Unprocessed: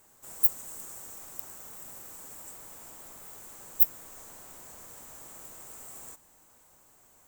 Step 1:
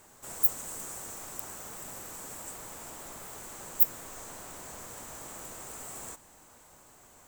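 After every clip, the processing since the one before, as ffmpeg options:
-af "highshelf=f=11000:g=-9.5,volume=2.24"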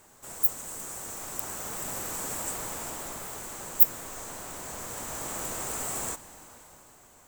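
-af "dynaudnorm=f=200:g=11:m=3.16"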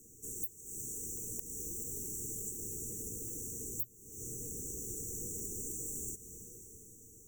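-af "afftfilt=real='re*(1-between(b*sr/4096,610,5700))':imag='im*(1-between(b*sr/4096,610,5700))':win_size=4096:overlap=0.75,acompressor=threshold=0.0112:ratio=6,afreqshift=-120,volume=1.12"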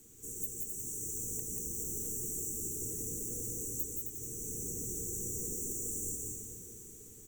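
-filter_complex "[0:a]asplit=2[s0][s1];[s1]aecho=0:1:170:0.501[s2];[s0][s2]amix=inputs=2:normalize=0,acrusher=bits=10:mix=0:aa=0.000001,asplit=2[s3][s4];[s4]aecho=0:1:186.6|265.3:0.631|0.501[s5];[s3][s5]amix=inputs=2:normalize=0"

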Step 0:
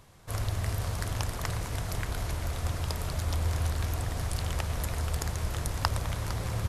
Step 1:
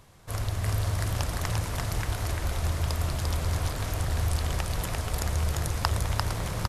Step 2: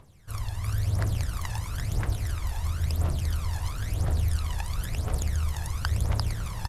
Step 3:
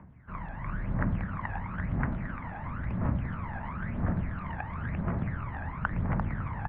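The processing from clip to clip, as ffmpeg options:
-af "aecho=1:1:346|802:0.708|0.282,volume=1.12"
-af "aphaser=in_gain=1:out_gain=1:delay=1.2:decay=0.7:speed=0.98:type=triangular,volume=0.422"
-af "equalizer=f=125:t=o:w=1:g=4,equalizer=f=250:t=o:w=1:g=12,equalizer=f=500:t=o:w=1:g=-10,highpass=f=160:t=q:w=0.5412,highpass=f=160:t=q:w=1.307,lowpass=f=2100:t=q:w=0.5176,lowpass=f=2100:t=q:w=0.7071,lowpass=f=2100:t=q:w=1.932,afreqshift=-68,volume=1.68"

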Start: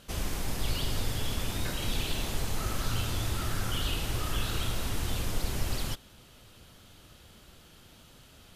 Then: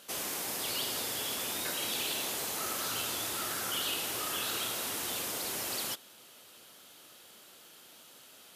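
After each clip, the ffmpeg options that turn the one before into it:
-af "highpass=350,highshelf=f=7900:g=9.5"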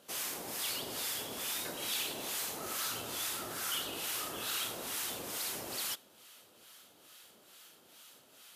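-filter_complex "[0:a]acrossover=split=940[s0][s1];[s0]aeval=exprs='val(0)*(1-0.7/2+0.7/2*cos(2*PI*2.3*n/s))':c=same[s2];[s1]aeval=exprs='val(0)*(1-0.7/2-0.7/2*cos(2*PI*2.3*n/s))':c=same[s3];[s2][s3]amix=inputs=2:normalize=0"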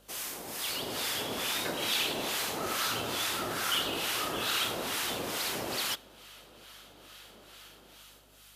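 -filter_complex "[0:a]acrossover=split=4900[s0][s1];[s0]dynaudnorm=f=180:g=9:m=2.66[s2];[s2][s1]amix=inputs=2:normalize=0,aeval=exprs='val(0)+0.000562*(sin(2*PI*50*n/s)+sin(2*PI*2*50*n/s)/2+sin(2*PI*3*50*n/s)/3+sin(2*PI*4*50*n/s)/4+sin(2*PI*5*50*n/s)/5)':c=same"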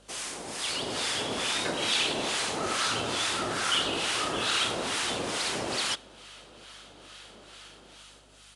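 -af "aresample=22050,aresample=44100,volume=1.5"

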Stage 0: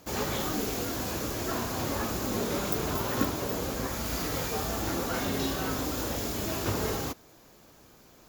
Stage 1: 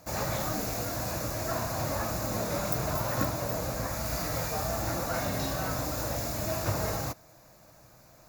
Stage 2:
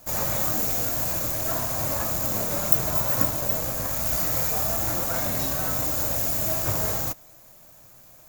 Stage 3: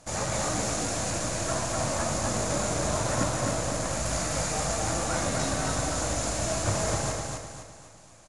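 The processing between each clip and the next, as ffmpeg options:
-af "equalizer=f=125:t=o:w=0.33:g=7,equalizer=f=250:t=o:w=0.33:g=-7,equalizer=f=400:t=o:w=0.33:g=-12,equalizer=f=630:t=o:w=0.33:g=7,equalizer=f=3150:t=o:w=0.33:g=-12"
-filter_complex "[0:a]aexciter=amount=2.7:drive=4.3:freq=6600,asplit=2[s0][s1];[s1]acrusher=bits=5:dc=4:mix=0:aa=0.000001,volume=0.631[s2];[s0][s2]amix=inputs=2:normalize=0,volume=0.708"
-af "aecho=1:1:254|508|762|1016|1270:0.668|0.274|0.112|0.0461|0.0189,aresample=22050,aresample=44100"

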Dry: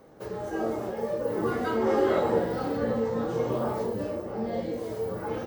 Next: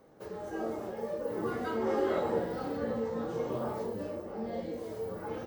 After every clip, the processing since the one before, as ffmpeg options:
-af "bandreject=f=60:t=h:w=6,bandreject=f=120:t=h:w=6,volume=0.501"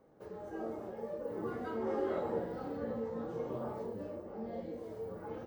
-af "highshelf=f=2100:g=-8.5,volume=0.596"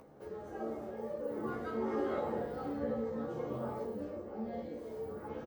-filter_complex "[0:a]acompressor=mode=upward:threshold=0.00224:ratio=2.5,asplit=2[s0][s1];[s1]adelay=14,volume=0.708[s2];[s0][s2]amix=inputs=2:normalize=0"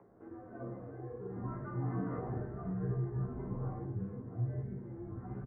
-af "highpass=f=200:t=q:w=0.5412,highpass=f=200:t=q:w=1.307,lowpass=f=2000:t=q:w=0.5176,lowpass=f=2000:t=q:w=0.7071,lowpass=f=2000:t=q:w=1.932,afreqshift=-100,asubboost=boost=8:cutoff=150,volume=0.668"

